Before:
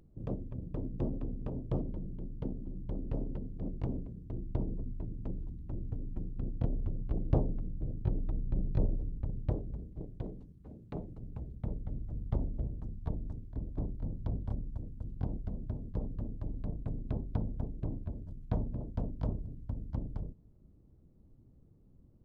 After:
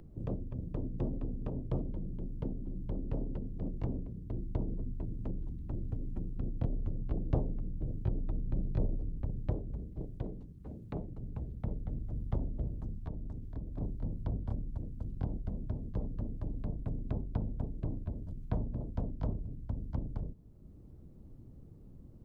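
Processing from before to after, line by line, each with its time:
12.96–13.81 compressor 2:1, threshold -41 dBFS
whole clip: three-band squash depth 40%

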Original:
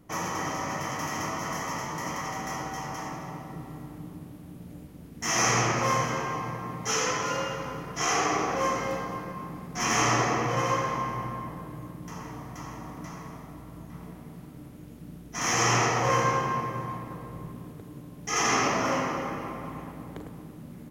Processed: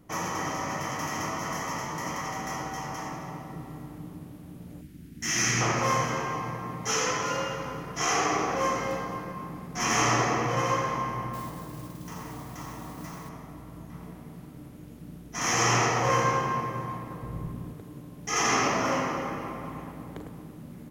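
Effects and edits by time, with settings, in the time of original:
4.81–5.61 band shelf 730 Hz -13 dB
11.33–13.29 modulation noise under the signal 14 dB
17.23–17.74 low shelf 120 Hz +11 dB

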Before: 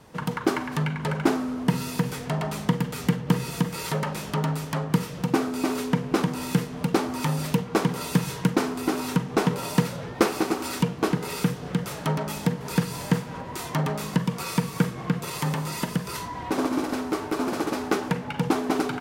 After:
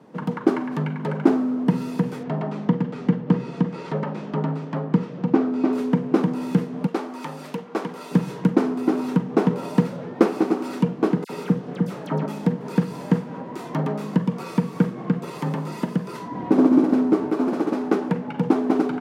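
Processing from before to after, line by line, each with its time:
2.23–5.73 air absorption 110 m
6.87–8.11 HPF 790 Hz 6 dB/oct
11.24–12.26 dispersion lows, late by 57 ms, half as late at 2000 Hz
16.31–17.31 low shelf 320 Hz +9 dB
whole clip: HPF 200 Hz 24 dB/oct; tilt -4 dB/oct; gain -1 dB

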